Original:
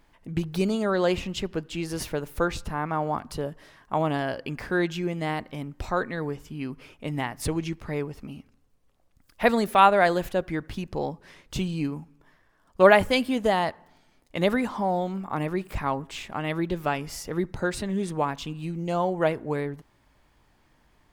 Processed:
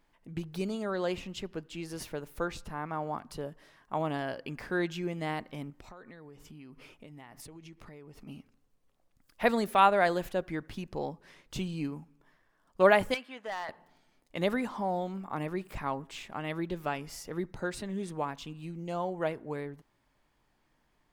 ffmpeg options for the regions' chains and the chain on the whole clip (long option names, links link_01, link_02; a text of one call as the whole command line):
ffmpeg -i in.wav -filter_complex "[0:a]asettb=1/sr,asplit=3[link_01][link_02][link_03];[link_01]atrim=end=5.704[link_04];[link_02]atrim=start=5.7:end=8.27,asetpts=PTS-STARTPTS,afade=type=in:duration=0.004:curve=qsin,afade=type=out:start_time=2.566:duration=0.004:curve=qsin,bandreject=frequency=1600:width=22,acompressor=threshold=-40dB:ratio=20:attack=3.2:release=140:knee=1:detection=peak[link_05];[link_03]atrim=start=8.266[link_06];[link_04][link_05]acrossfade=duration=0.004:curve1=hsin:curve2=qsin[link_07];[link_07][link_06]acrossfade=duration=0.004:curve1=qsin:curve2=hsin,asettb=1/sr,asplit=3[link_08][link_09][link_10];[link_08]atrim=end=13.144[link_11];[link_09]atrim=start=13.14:end=13.69,asetpts=PTS-STARTPTS,afade=type=in:duration=0.004:curve=qsin,afade=type=out:start_time=0.546:duration=0.004:curve=qsin,bandpass=frequency=1600:width_type=q:width=1.2,volume=24.5dB,asoftclip=hard,volume=-24.5dB[link_12];[link_10]atrim=start=13.686[link_13];[link_11][link_12]acrossfade=duration=0.004:curve1=hsin:curve2=qsin[link_14];[link_14][link_13]acrossfade=duration=0.004:curve1=qsin:curve2=hsin,equalizer=frequency=66:width_type=o:width=1.1:gain=-7.5,dynaudnorm=framelen=750:gausssize=13:maxgain=11.5dB,volume=-8.5dB" out.wav